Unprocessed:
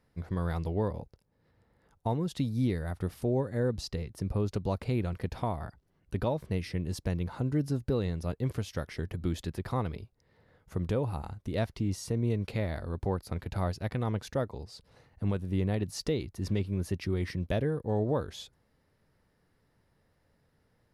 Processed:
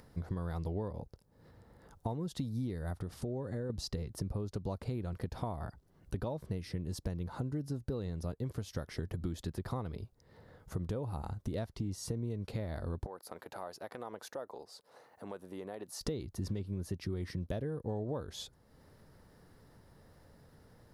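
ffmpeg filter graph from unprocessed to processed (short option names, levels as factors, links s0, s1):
-filter_complex "[0:a]asettb=1/sr,asplit=3[s0][s1][s2];[s0]atrim=end=3.014[s3];[s1]atrim=start=3.01:end=3.7,asetpts=PTS-STARTPTS,afade=t=in:d=0.004:c=qsin,afade=t=out:st=0.686:d=0.004:c=qsin,lowpass=9000,acompressor=threshold=0.0158:ratio=2.5:attack=3.2:release=140:knee=1:detection=peak[s4];[s2]atrim=start=3.696[s5];[s3][s4]acrossfade=d=0.004:c1=hsin:c2=qsin[s6];[s6][s5]acrossfade=d=0.004:c1=qsin:c2=hsin,asettb=1/sr,asplit=3[s7][s8][s9];[s7]atrim=end=13.064[s10];[s8]atrim=start=13.06:end=16.01,asetpts=PTS-STARTPTS,afade=t=in:d=0.004:c=qsin,afade=t=out:st=2.946:d=0.004:c=qsin,highpass=560,equalizer=f=4600:t=o:w=2.7:g=-7.5,acompressor=threshold=0.00631:ratio=2.5:attack=3.2:release=140:knee=1:detection=peak[s11];[s9]atrim=start=16.006[s12];[s10][s11]acrossfade=d=0.004:c1=hsin:c2=qsin[s13];[s13][s12]acrossfade=d=0.004:c1=qsin:c2=hsin,acompressor=threshold=0.0126:ratio=6,equalizer=f=2400:w=1.5:g=-7,acompressor=mode=upward:threshold=0.00178:ratio=2.5,volume=1.58"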